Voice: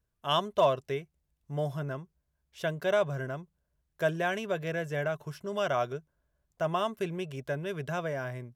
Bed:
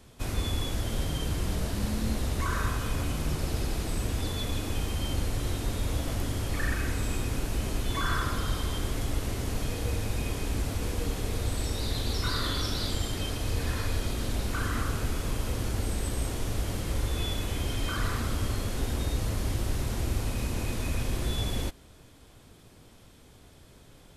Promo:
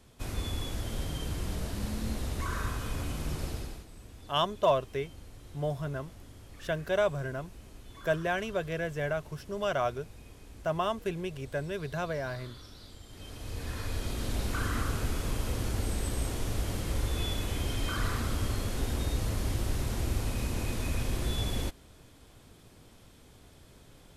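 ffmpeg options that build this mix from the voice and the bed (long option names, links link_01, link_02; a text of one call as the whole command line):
ffmpeg -i stem1.wav -i stem2.wav -filter_complex "[0:a]adelay=4050,volume=-0.5dB[link_01];[1:a]volume=13.5dB,afade=type=out:start_time=3.44:duration=0.42:silence=0.177828,afade=type=in:start_time=13.06:duration=1.36:silence=0.125893[link_02];[link_01][link_02]amix=inputs=2:normalize=0" out.wav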